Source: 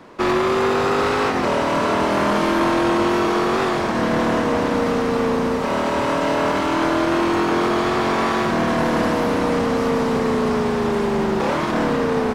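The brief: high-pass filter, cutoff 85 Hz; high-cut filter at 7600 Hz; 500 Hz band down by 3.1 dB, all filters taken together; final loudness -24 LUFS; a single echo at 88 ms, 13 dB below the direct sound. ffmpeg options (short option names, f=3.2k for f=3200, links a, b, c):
-af "highpass=85,lowpass=7.6k,equalizer=f=500:t=o:g=-4,aecho=1:1:88:0.224,volume=-3.5dB"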